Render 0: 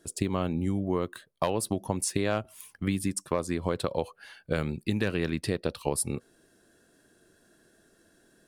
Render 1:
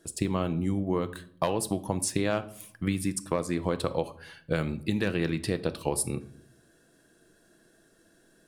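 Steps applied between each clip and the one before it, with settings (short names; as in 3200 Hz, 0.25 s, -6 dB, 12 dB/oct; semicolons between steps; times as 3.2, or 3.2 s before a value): reverb RT60 0.60 s, pre-delay 6 ms, DRR 11 dB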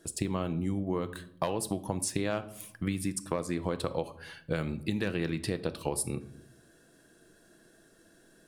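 compressor 1.5:1, threshold -37 dBFS, peak gain reduction 6 dB; gain +1.5 dB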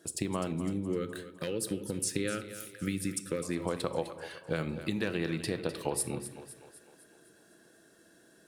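spectral gain 0.68–3.43, 570–1200 Hz -19 dB; HPF 150 Hz 6 dB/oct; on a send: split-band echo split 380 Hz, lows 91 ms, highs 0.254 s, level -12 dB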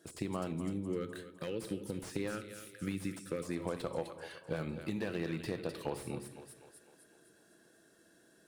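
slew limiter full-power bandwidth 40 Hz; gain -4 dB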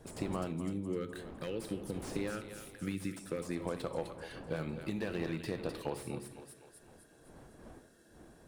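wind noise 450 Hz -52 dBFS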